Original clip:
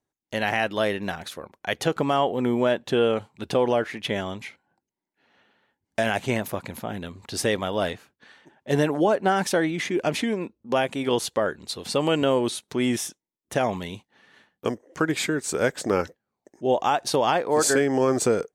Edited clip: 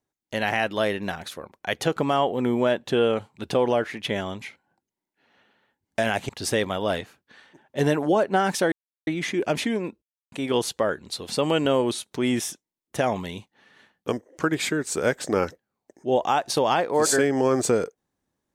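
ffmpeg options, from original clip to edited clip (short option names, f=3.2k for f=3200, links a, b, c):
-filter_complex "[0:a]asplit=5[a][b][c][d][e];[a]atrim=end=6.292[f];[b]atrim=start=7.208:end=9.64,asetpts=PTS-STARTPTS,afade=t=out:st=2.428:d=0.004:c=hsin,apad=pad_dur=0.35[g];[c]atrim=start=9.64:end=10.59,asetpts=PTS-STARTPTS,afade=t=in:d=0.004:c=hsin,afade=t=out:st=0.946:d=0.004:c=hsin[h];[d]atrim=start=10.59:end=10.89,asetpts=PTS-STARTPTS,volume=0[i];[e]atrim=start=10.89,asetpts=PTS-STARTPTS,afade=t=in:d=0.004:c=hsin[j];[g][h][i][j]concat=n=4:v=0:a=1[k];[f][k]acrossfade=d=0.004:c1=hsin:c2=hsin"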